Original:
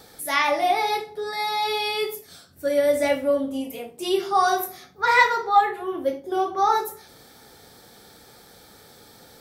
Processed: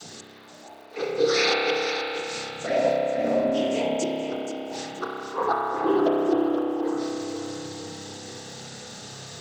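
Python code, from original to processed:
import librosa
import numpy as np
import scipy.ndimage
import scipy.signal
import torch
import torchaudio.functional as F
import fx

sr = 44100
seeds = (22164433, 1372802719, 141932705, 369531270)

p1 = fx.env_lowpass_down(x, sr, base_hz=620.0, full_db=-15.5)
p2 = fx.bass_treble(p1, sr, bass_db=5, treble_db=12)
p3 = fx.notch_comb(p2, sr, f0_hz=280.0)
p4 = fx.gate_flip(p3, sr, shuts_db=-19.0, range_db=-32)
p5 = fx.noise_vocoder(p4, sr, seeds[0], bands=16)
p6 = fx.dmg_crackle(p5, sr, seeds[1], per_s=220.0, level_db=-50.0)
p7 = p6 + fx.echo_feedback(p6, sr, ms=477, feedback_pct=43, wet_db=-9.5, dry=0)
p8 = fx.rev_spring(p7, sr, rt60_s=3.2, pass_ms=(30,), chirp_ms=50, drr_db=-2.5)
y = F.gain(torch.from_numpy(p8), 5.0).numpy()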